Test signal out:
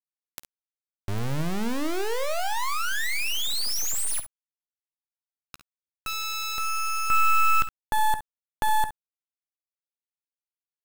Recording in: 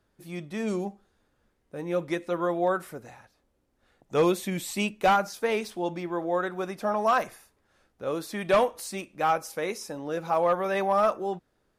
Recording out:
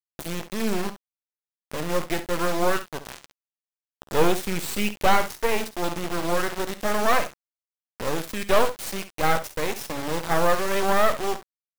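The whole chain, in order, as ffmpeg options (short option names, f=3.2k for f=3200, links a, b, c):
-af "acompressor=mode=upward:threshold=-31dB:ratio=2.5,acrusher=bits=3:dc=4:mix=0:aa=0.000001,aecho=1:1:13|53|67:0.15|0.15|0.211,volume=6dB"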